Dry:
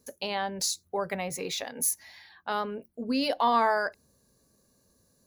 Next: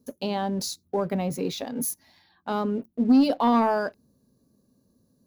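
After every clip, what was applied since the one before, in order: graphic EQ 125/250/2000/8000 Hz +5/+11/-9/-9 dB; waveshaping leveller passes 1; trim -1.5 dB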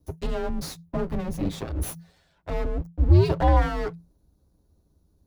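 comb filter that takes the minimum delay 8.5 ms; tilt shelf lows +4.5 dB, about 1.1 kHz; frequency shift -170 Hz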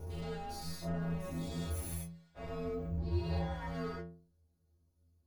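every event in the spectrogram widened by 240 ms; compression 6:1, threshold -16 dBFS, peak gain reduction 7.5 dB; inharmonic resonator 82 Hz, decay 0.57 s, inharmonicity 0.008; trim -5 dB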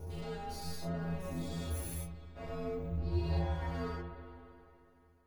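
reverberation RT60 3.0 s, pre-delay 63 ms, DRR 7.5 dB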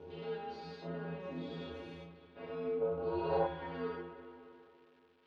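time-frequency box 2.82–3.46 s, 420–1600 Hz +12 dB; crackle 500 per s -56 dBFS; cabinet simulation 260–3400 Hz, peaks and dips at 450 Hz +3 dB, 680 Hz -8 dB, 1.2 kHz -5 dB, 2 kHz -5 dB; trim +2 dB

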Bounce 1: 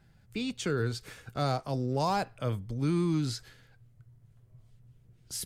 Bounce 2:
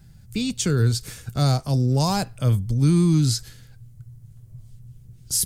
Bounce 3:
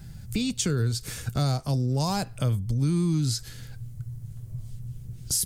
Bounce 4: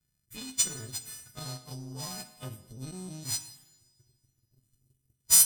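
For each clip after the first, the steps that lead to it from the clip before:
tone controls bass +12 dB, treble +14 dB; trim +2.5 dB
compression 2.5:1, threshold -35 dBFS, peak gain reduction 14 dB; trim +6.5 dB
partials quantised in pitch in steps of 3 st; power-law waveshaper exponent 2; two-slope reverb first 0.92 s, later 2.9 s, from -22 dB, DRR 9 dB

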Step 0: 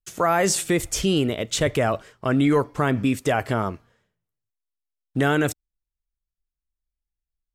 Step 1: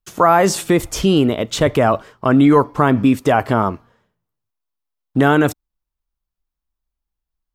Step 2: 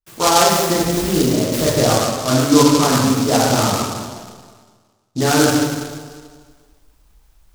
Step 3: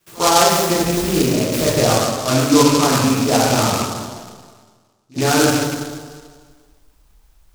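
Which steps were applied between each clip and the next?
ten-band graphic EQ 250 Hz +4 dB, 1 kHz +7 dB, 2 kHz -3 dB, 8 kHz -6 dB; trim +4.5 dB
reverse; upward compressor, threshold -28 dBFS; reverse; plate-style reverb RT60 1.6 s, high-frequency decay 0.9×, DRR -8.5 dB; delay time shaken by noise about 5 kHz, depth 0.095 ms; trim -8.5 dB
rattle on loud lows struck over -21 dBFS, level -21 dBFS; de-hum 50.08 Hz, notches 6; pre-echo 65 ms -23.5 dB

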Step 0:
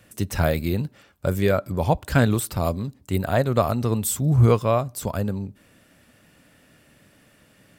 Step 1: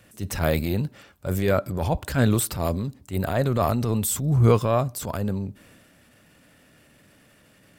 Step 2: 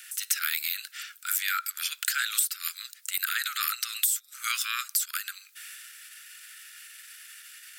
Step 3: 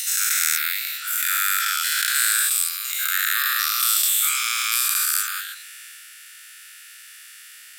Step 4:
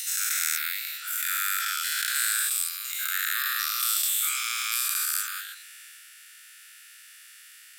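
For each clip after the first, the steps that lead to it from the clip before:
transient shaper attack -9 dB, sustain +4 dB
steep high-pass 1.3 kHz 96 dB/octave; treble shelf 3.3 kHz +10.5 dB; compression 8:1, threshold -31 dBFS, peak gain reduction 17 dB; trim +7 dB
every event in the spectrogram widened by 480 ms; trim -2.5 dB
high-pass 970 Hz 24 dB/octave; trim -6 dB

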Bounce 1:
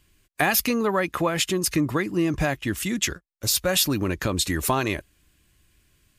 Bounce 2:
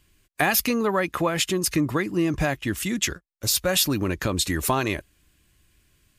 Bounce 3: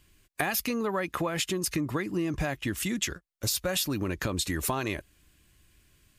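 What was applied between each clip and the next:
no audible change
compression 3:1, threshold -28 dBFS, peak gain reduction 8.5 dB

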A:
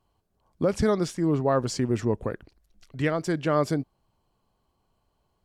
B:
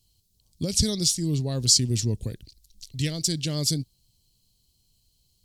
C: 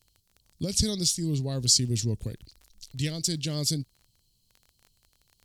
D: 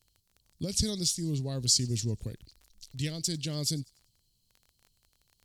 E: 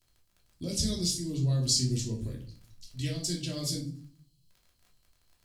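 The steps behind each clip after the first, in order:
FFT filter 120 Hz 0 dB, 1.3 kHz -27 dB, 4.1 kHz +12 dB; trim +5 dB
crackle 20 per s -37 dBFS; trim -2.5 dB
feedback echo behind a high-pass 97 ms, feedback 43%, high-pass 3.4 kHz, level -23.5 dB; trim -3.5 dB
simulated room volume 410 m³, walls furnished, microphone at 2.9 m; trim -5 dB

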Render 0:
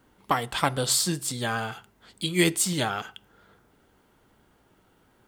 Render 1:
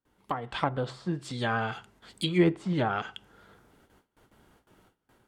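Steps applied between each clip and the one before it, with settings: gate with hold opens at -52 dBFS; low-pass that closes with the level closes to 1.2 kHz, closed at -21.5 dBFS; level rider gain up to 9 dB; trim -7.5 dB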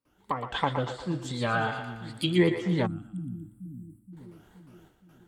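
drifting ripple filter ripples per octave 0.95, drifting +2.8 Hz, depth 9 dB; two-band feedback delay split 340 Hz, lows 471 ms, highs 118 ms, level -8 dB; time-frequency box 2.86–4.13 s, 340–7400 Hz -29 dB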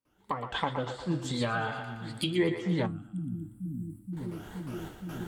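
recorder AGC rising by 9.6 dB/s; flange 0.42 Hz, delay 8.4 ms, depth 4.3 ms, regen -75%

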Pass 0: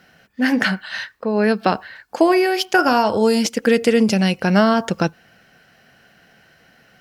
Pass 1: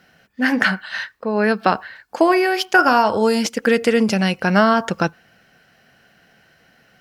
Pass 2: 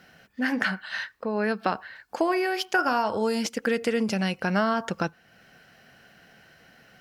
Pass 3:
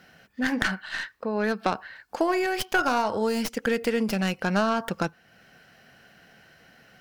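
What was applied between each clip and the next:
dynamic bell 1.3 kHz, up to +6 dB, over -32 dBFS, Q 0.85; trim -2 dB
compression 1.5:1, threshold -38 dBFS, peak gain reduction 10.5 dB
tracing distortion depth 0.14 ms

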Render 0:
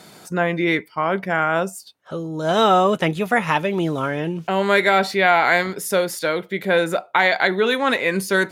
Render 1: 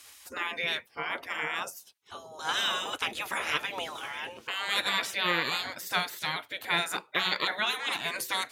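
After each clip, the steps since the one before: spectral gate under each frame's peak -15 dB weak; bass shelf 270 Hz -6 dB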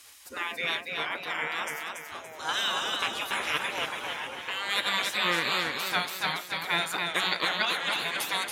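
modulated delay 283 ms, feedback 47%, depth 84 cents, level -4 dB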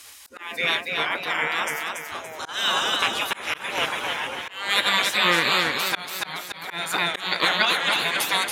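slow attack 239 ms; trim +7 dB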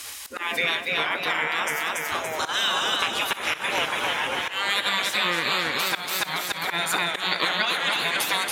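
compression 4:1, threshold -31 dBFS, peak gain reduction 14 dB; thinning echo 63 ms, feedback 65%, level -17 dB; trim +8 dB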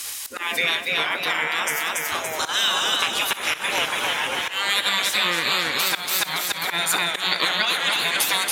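high-pass 54 Hz; treble shelf 3.6 kHz +7.5 dB

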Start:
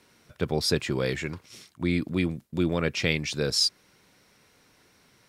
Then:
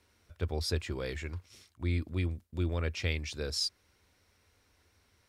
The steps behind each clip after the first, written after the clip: resonant low shelf 110 Hz +8.5 dB, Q 3; trim -9 dB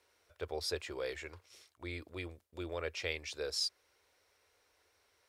resonant low shelf 310 Hz -13 dB, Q 1.5; trim -2.5 dB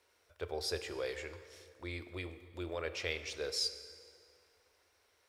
plate-style reverb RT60 2.4 s, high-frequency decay 0.7×, DRR 10 dB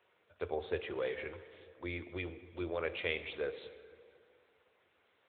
trim +3 dB; AMR-NB 10.2 kbps 8 kHz

